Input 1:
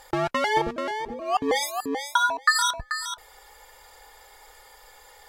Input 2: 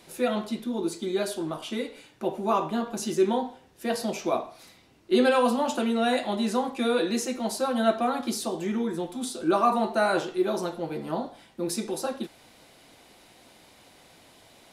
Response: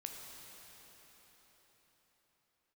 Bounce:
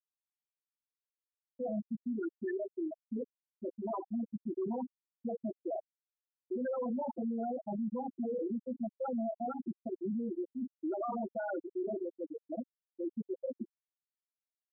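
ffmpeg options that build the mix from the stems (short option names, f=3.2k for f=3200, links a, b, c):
-filter_complex "[0:a]asplit=2[a][b];[b]adelay=4.3,afreqshift=-0.55[c];[a][c]amix=inputs=2:normalize=1,volume=-18dB,asplit=2[d][e];[e]volume=-15.5dB[f];[1:a]bandreject=f=1.1k:w=6.9,adelay=1400,volume=-3dB,asplit=2[g][h];[h]volume=-24dB[i];[2:a]atrim=start_sample=2205[j];[f][i]amix=inputs=2:normalize=0[k];[k][j]afir=irnorm=-1:irlink=0[l];[d][g][l]amix=inputs=3:normalize=0,asoftclip=type=hard:threshold=-26.5dB,afftfilt=real='re*gte(hypot(re,im),0.158)':imag='im*gte(hypot(re,im),0.158)':win_size=1024:overlap=0.75,alimiter=level_in=6.5dB:limit=-24dB:level=0:latency=1:release=18,volume=-6.5dB"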